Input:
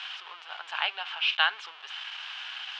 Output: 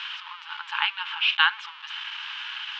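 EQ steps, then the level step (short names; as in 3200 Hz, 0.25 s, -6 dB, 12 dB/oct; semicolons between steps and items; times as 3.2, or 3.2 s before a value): dynamic EQ 4700 Hz, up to -3 dB, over -46 dBFS; brick-wall FIR high-pass 810 Hz; air absorption 75 m; +5.5 dB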